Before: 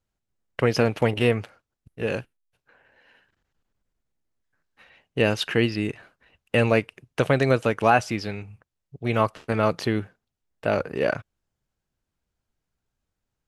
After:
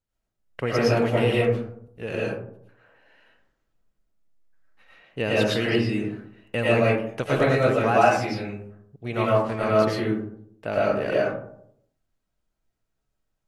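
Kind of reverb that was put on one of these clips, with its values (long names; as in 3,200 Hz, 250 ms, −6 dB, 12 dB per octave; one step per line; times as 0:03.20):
comb and all-pass reverb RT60 0.7 s, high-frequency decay 0.35×, pre-delay 70 ms, DRR −6.5 dB
level −6.5 dB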